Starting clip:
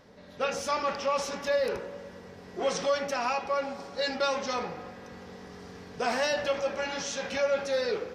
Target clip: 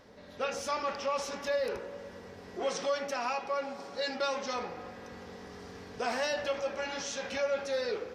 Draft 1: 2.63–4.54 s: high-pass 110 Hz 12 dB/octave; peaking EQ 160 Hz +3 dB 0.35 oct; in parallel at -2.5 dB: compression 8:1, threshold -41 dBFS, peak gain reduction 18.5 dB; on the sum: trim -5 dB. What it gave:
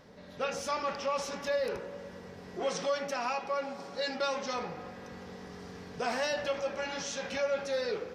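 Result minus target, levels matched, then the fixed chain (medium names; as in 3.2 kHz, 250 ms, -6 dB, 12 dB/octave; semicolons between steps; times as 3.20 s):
125 Hz band +3.5 dB
2.63–4.54 s: high-pass 110 Hz 12 dB/octave; peaking EQ 160 Hz -8 dB 0.35 oct; in parallel at -2.5 dB: compression 8:1, threshold -41 dBFS, peak gain reduction 18.5 dB; on the sum: trim -5 dB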